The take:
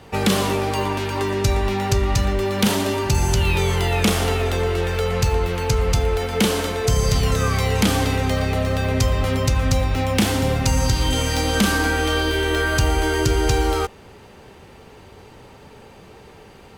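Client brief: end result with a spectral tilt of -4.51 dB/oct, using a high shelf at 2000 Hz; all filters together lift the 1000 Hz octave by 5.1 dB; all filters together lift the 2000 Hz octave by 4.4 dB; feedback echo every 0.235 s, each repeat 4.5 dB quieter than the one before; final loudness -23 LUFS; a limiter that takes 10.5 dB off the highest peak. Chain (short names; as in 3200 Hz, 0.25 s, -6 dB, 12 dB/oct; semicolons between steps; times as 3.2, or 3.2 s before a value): bell 1000 Hz +6.5 dB; high shelf 2000 Hz -8.5 dB; bell 2000 Hz +8.5 dB; limiter -15 dBFS; feedback echo 0.235 s, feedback 60%, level -4.5 dB; gain -1.5 dB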